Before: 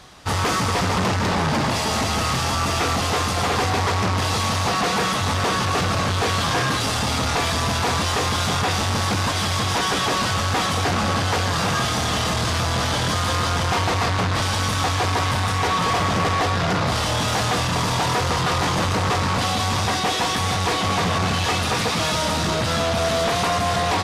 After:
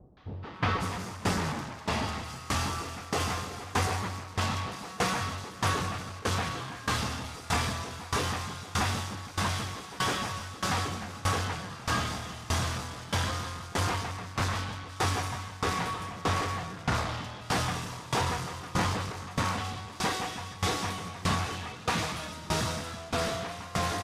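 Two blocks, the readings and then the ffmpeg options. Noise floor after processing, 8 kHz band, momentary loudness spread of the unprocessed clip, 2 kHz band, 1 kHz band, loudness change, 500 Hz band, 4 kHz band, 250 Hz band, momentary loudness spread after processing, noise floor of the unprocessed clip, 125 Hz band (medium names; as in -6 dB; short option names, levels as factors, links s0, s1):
-44 dBFS, -10.5 dB, 1 LU, -10.5 dB, -11.0 dB, -11.0 dB, -12.0 dB, -12.5 dB, -10.5 dB, 6 LU, -23 dBFS, -10.0 dB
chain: -filter_complex "[0:a]acrossover=split=580|3900[s0][s1][s2];[s1]adelay=170[s3];[s2]adelay=540[s4];[s0][s3][s4]amix=inputs=3:normalize=0,acontrast=39,aeval=exprs='val(0)*pow(10,-20*if(lt(mod(1.6*n/s,1),2*abs(1.6)/1000),1-mod(1.6*n/s,1)/(2*abs(1.6)/1000),(mod(1.6*n/s,1)-2*abs(1.6)/1000)/(1-2*abs(1.6)/1000))/20)':c=same,volume=0.376"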